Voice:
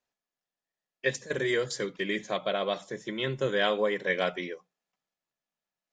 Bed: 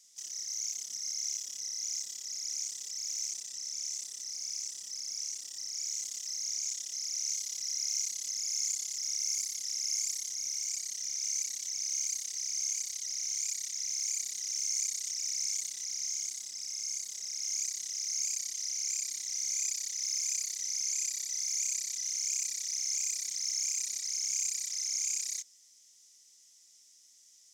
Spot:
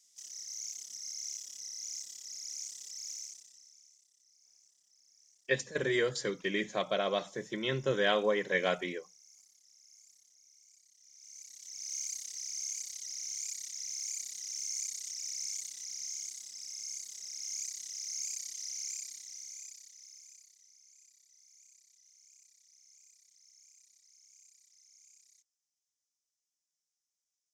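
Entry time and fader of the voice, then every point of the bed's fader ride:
4.45 s, −2.0 dB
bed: 0:03.11 −5.5 dB
0:03.97 −27.5 dB
0:10.92 −27.5 dB
0:11.94 −5 dB
0:18.83 −5 dB
0:20.80 −29 dB

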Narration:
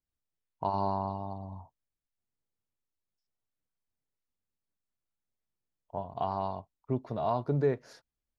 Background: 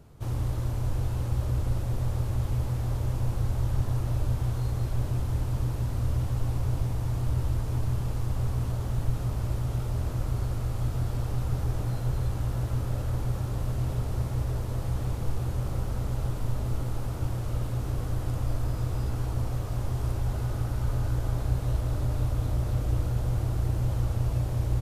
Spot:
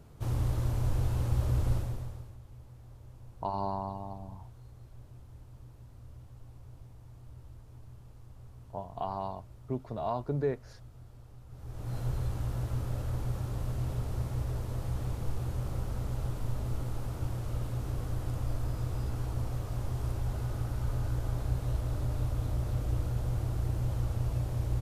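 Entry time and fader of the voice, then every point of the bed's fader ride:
2.80 s, −3.0 dB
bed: 0:01.74 −1 dB
0:02.40 −22.5 dB
0:11.47 −22.5 dB
0:11.97 −4.5 dB

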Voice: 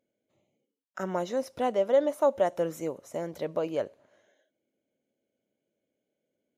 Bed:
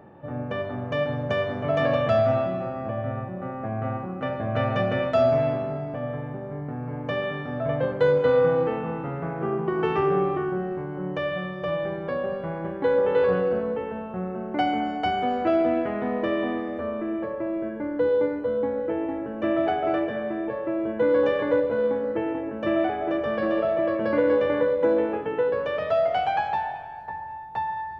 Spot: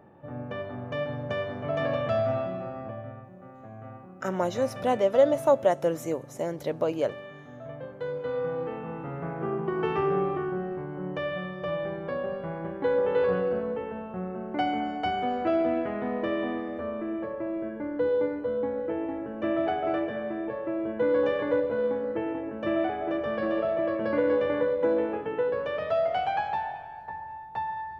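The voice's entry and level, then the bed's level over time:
3.25 s, +3.0 dB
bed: 0:02.79 −5.5 dB
0:03.26 −14.5 dB
0:07.96 −14.5 dB
0:09.25 −3.5 dB

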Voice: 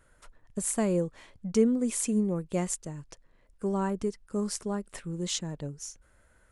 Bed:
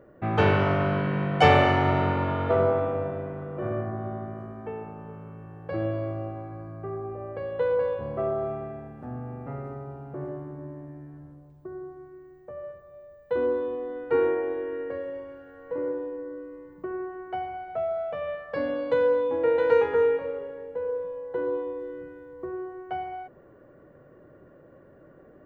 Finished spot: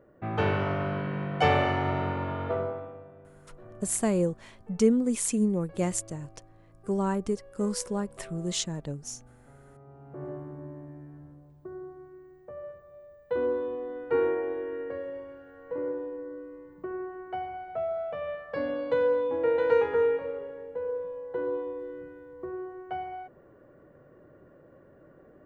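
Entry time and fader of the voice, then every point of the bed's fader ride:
3.25 s, +1.5 dB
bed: 0:02.47 −5.5 dB
0:03.06 −19 dB
0:09.61 −19 dB
0:10.29 −2.5 dB

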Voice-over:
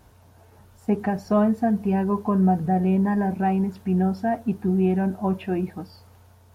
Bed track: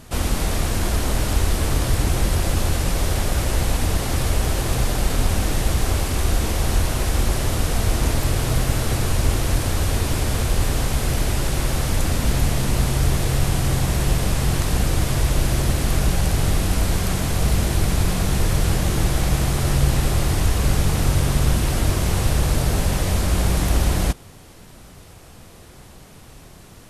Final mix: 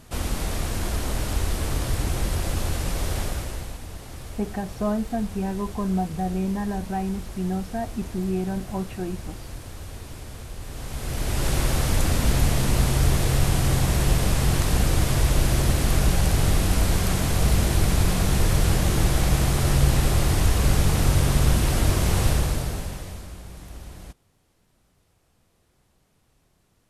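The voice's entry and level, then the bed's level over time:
3.50 s, −5.5 dB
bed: 0:03.23 −5.5 dB
0:03.82 −17 dB
0:10.61 −17 dB
0:11.49 −1 dB
0:22.29 −1 dB
0:23.42 −21.5 dB

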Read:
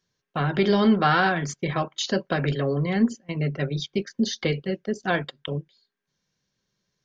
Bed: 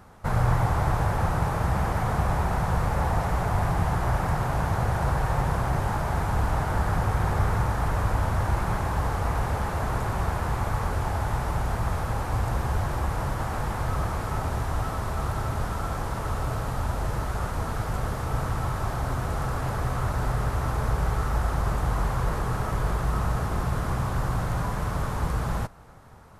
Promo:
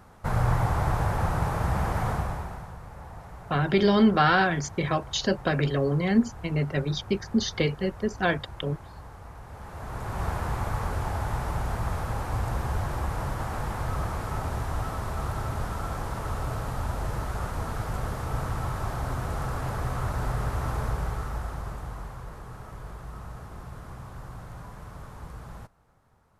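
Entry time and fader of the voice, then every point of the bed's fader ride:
3.15 s, −0.5 dB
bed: 0:02.09 −1.5 dB
0:02.77 −18 dB
0:09.43 −18 dB
0:10.26 −2.5 dB
0:20.77 −2.5 dB
0:22.26 −14.5 dB

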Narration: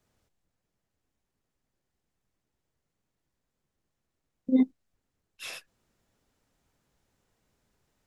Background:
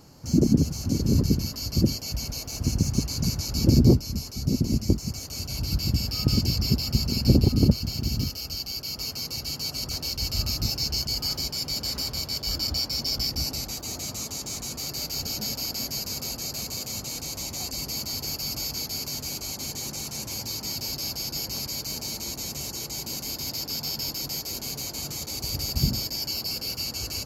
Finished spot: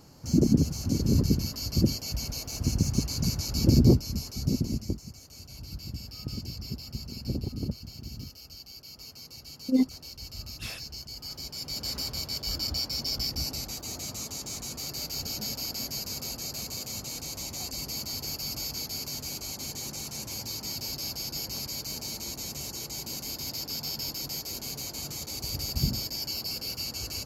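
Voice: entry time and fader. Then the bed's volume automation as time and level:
5.20 s, −0.5 dB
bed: 0:04.49 −2 dB
0:05.13 −13.5 dB
0:11.13 −13.5 dB
0:11.89 −3.5 dB

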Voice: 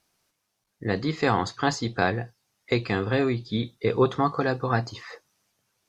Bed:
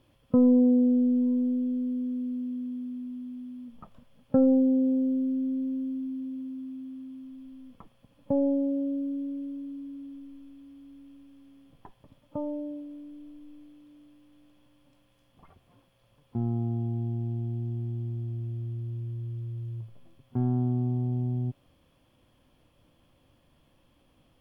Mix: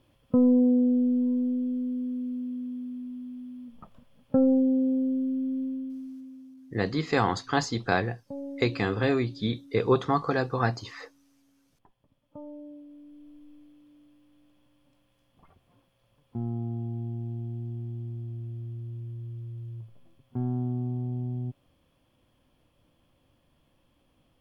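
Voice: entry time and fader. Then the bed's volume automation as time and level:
5.90 s, −1.5 dB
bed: 0:05.63 −0.5 dB
0:06.58 −12.5 dB
0:12.09 −12.5 dB
0:13.35 −3 dB

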